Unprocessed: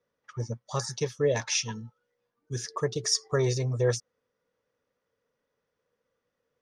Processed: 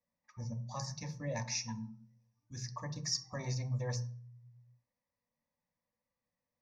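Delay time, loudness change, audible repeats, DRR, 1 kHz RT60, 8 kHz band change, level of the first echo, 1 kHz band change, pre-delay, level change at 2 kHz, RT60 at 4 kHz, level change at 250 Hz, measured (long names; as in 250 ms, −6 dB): no echo audible, −10.0 dB, no echo audible, 7.0 dB, 0.40 s, −9.5 dB, no echo audible, −8.0 dB, 3 ms, −10.5 dB, 0.40 s, −7.5 dB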